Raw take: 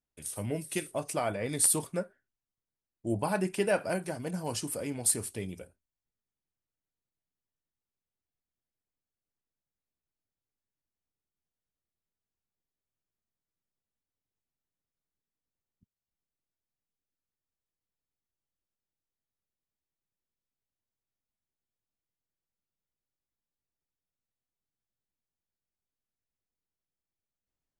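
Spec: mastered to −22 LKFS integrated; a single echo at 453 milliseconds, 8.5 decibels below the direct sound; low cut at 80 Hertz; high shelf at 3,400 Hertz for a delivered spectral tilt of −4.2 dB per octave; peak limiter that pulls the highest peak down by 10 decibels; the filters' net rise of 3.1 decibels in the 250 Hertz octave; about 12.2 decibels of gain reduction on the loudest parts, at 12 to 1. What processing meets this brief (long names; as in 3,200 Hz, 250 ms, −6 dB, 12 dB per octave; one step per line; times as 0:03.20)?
high-pass filter 80 Hz
parametric band 250 Hz +4.5 dB
high-shelf EQ 3,400 Hz +6.5 dB
downward compressor 12 to 1, threshold −27 dBFS
brickwall limiter −25.5 dBFS
single-tap delay 453 ms −8.5 dB
level +14 dB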